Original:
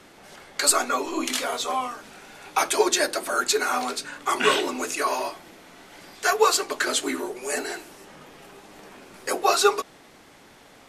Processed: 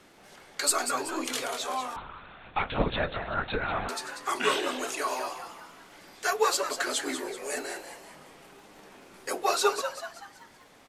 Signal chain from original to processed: crackle 20/s -46 dBFS; frequency-shifting echo 0.19 s, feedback 45%, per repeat +130 Hz, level -9 dB; 1.96–3.89 LPC vocoder at 8 kHz whisper; gain -6 dB

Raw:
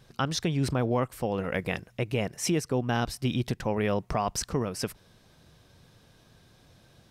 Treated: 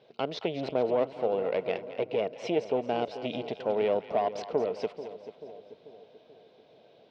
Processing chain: one diode to ground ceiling -28 dBFS; speaker cabinet 310–3700 Hz, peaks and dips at 450 Hz +9 dB, 640 Hz +9 dB, 1200 Hz -8 dB, 1700 Hz -10 dB; split-band echo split 690 Hz, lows 0.437 s, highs 0.219 s, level -12 dB

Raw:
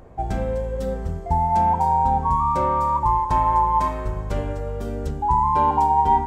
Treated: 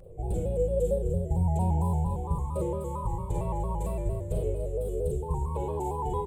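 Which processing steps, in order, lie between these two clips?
EQ curve 160 Hz 0 dB, 240 Hz -16 dB, 480 Hz +6 dB, 690 Hz -14 dB, 1700 Hz -30 dB, 2500 Hz -13 dB, 3800 Hz -12 dB, 5600 Hz -25 dB, 8100 Hz +5 dB, 11000 Hz +1 dB; echo 0.292 s -14 dB; Schroeder reverb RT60 0.45 s, combs from 33 ms, DRR -1.5 dB; shaped vibrato square 4.4 Hz, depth 100 cents; gain -4 dB

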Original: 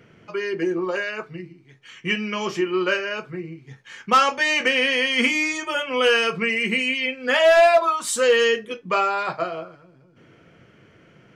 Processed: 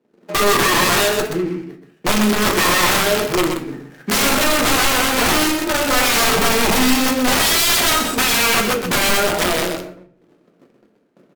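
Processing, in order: median filter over 41 samples; gate -50 dBFS, range -26 dB; HPF 210 Hz 24 dB/oct; in parallel at -1 dB: compressor 6:1, threshold -29 dBFS, peak gain reduction 15 dB; on the sum: transient shaper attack +1 dB, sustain +8 dB; wrapped overs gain 21 dB; on a send: echo 0.126 s -7 dB; on the sum: shoebox room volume 55 m³, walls mixed, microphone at 0.35 m; gain +8.5 dB; AAC 96 kbps 48000 Hz

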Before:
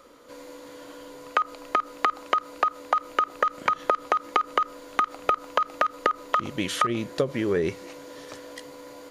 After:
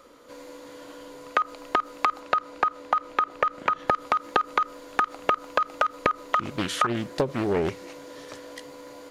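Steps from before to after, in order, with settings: 2.19–3.87 high shelf 8800 Hz -> 5300 Hz -10.5 dB; Doppler distortion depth 0.53 ms

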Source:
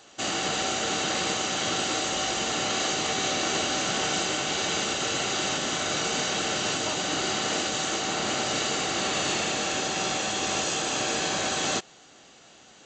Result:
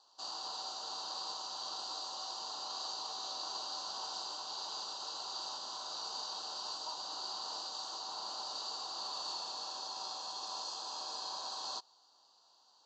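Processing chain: double band-pass 2100 Hz, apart 2.2 oct; gain -3.5 dB

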